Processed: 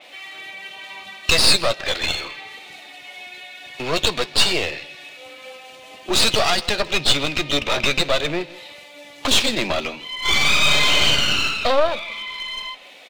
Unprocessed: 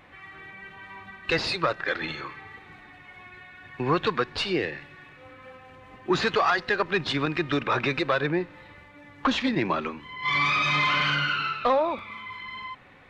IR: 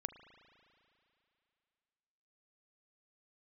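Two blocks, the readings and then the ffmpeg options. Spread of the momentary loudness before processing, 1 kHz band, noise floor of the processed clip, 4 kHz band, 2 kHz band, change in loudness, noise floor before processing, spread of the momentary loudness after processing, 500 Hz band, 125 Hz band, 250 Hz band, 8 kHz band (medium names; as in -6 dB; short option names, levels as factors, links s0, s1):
21 LU, +0.5 dB, -43 dBFS, +13.5 dB, +4.5 dB, +7.0 dB, -50 dBFS, 22 LU, +4.0 dB, +1.5 dB, 0.0 dB, +22.5 dB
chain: -filter_complex "[0:a]highpass=96,equalizer=f=630:t=o:w=0.6:g=12,bandreject=f=1100:w=13,acrossover=split=210[s0][s1];[s0]aeval=exprs='sgn(val(0))*max(abs(val(0))-0.00133,0)':c=same[s2];[s2][s1]amix=inputs=2:normalize=0,aexciter=amount=8.1:drive=5.9:freq=2500,aeval=exprs='clip(val(0),-1,0.0398)':c=same,asplit=2[s3][s4];[s4]adelay=14,volume=0.2[s5];[s3][s5]amix=inputs=2:normalize=0,aecho=1:1:160:0.0944,adynamicequalizer=threshold=0.01:dfrequency=5100:dqfactor=0.7:tfrequency=5100:tqfactor=0.7:attack=5:release=100:ratio=0.375:range=3.5:mode=cutabove:tftype=highshelf,volume=1.12"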